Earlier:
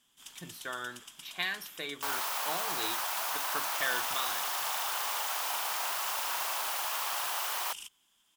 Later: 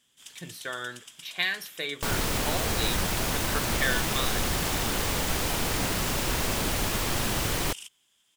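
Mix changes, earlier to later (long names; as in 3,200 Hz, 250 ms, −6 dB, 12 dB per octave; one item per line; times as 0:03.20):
first sound −3.5 dB
second sound: remove high-pass filter 660 Hz 24 dB per octave
master: add octave-band graphic EQ 125/500/1,000/2,000/4,000/8,000 Hz +8/+7/−3/+6/+4/+6 dB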